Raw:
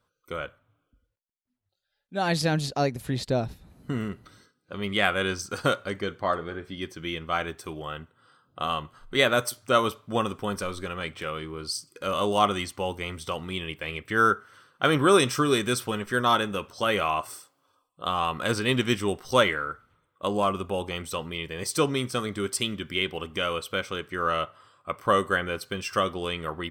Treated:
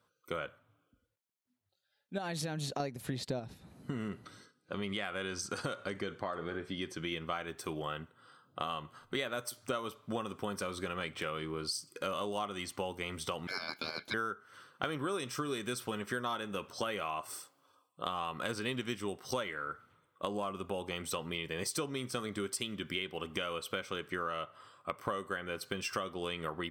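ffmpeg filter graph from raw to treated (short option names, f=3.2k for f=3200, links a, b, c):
-filter_complex "[0:a]asettb=1/sr,asplit=3[a][b][c];[a]atrim=end=2.184[d];[b]atrim=start=2.18:end=2.8,asetpts=PTS-STARTPTS,afade=t=in:d=0.004:c=qsin,afade=t=out:st=0.616:d=0.004:c=qsin,bandreject=f=4.9k:w=6.5,acompressor=threshold=-30dB:ratio=5:attack=3.2:release=140:knee=1:detection=peak[e];[c]atrim=start=2.796[f];[d][e]acrossfade=d=0.004:c1=hsin:c2=qsin[g];[g][f]acrossfade=d=0.004:c1=qsin:c2=hsin,asettb=1/sr,asplit=3[h][i][j];[h]atrim=end=3.394[k];[i]atrim=start=3.39:end=7.12,asetpts=PTS-STARTPTS,afade=t=in:d=0.004:c=qsin,afade=t=out:st=3.726:d=0.004:c=qsin,lowpass=f=12k:w=0.5412,lowpass=f=12k:w=1.3066,acompressor=threshold=-31dB:ratio=2:attack=3.2:release=140:knee=1:detection=peak[l];[j]atrim=start=7.116[m];[k][l]acrossfade=d=0.004:c1=hsin:c2=qsin[n];[n][m]acrossfade=d=0.004:c1=qsin:c2=hsin,asettb=1/sr,asplit=3[o][p][q];[o]atrim=end=13.474[r];[p]atrim=start=13.47:end=14.14,asetpts=PTS-STARTPTS,afade=t=in:d=0.004:c=qsin,afade=t=out:st=0.666:d=0.004:c=qsin,highpass=f=220:w=0.5412,highpass=f=220:w=1.3066,aeval=exprs='val(0)*sin(2*PI*1900*n/s)':c=same[s];[q]atrim=start=14.136[t];[r][s]acrossfade=d=0.004:c1=hsin:c2=qsin[u];[u][t]acrossfade=d=0.004:c1=qsin:c2=hsin,highpass=110,acompressor=threshold=-33dB:ratio=10"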